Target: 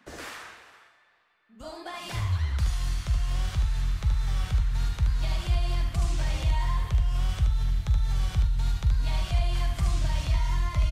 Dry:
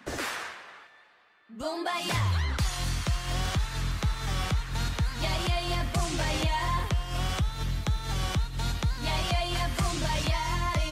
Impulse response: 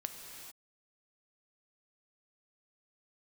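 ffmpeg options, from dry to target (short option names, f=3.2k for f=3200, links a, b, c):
-filter_complex "[0:a]asplit=2[a][b];[b]aecho=0:1:75:0.531[c];[a][c]amix=inputs=2:normalize=0,asubboost=boost=5.5:cutoff=110,asplit=2[d][e];[1:a]atrim=start_sample=2205,adelay=43[f];[e][f]afir=irnorm=-1:irlink=0,volume=-10.5dB[g];[d][g]amix=inputs=2:normalize=0,volume=-8dB"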